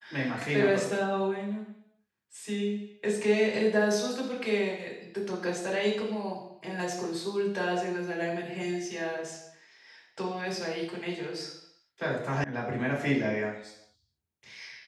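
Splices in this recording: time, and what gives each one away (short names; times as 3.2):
12.44 sound cut off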